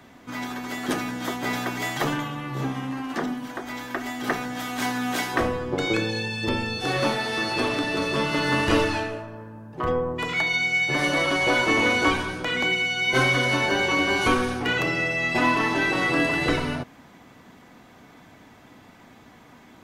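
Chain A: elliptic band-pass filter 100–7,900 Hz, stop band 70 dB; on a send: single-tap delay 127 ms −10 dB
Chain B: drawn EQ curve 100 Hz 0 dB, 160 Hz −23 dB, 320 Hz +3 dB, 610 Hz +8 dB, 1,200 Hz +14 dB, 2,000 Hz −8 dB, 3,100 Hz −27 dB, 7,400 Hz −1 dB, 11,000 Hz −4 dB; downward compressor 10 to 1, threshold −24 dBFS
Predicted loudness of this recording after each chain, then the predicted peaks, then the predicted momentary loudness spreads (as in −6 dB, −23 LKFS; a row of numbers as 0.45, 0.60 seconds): −24.0, −28.5 LKFS; −8.5, −11.5 dBFS; 11, 17 LU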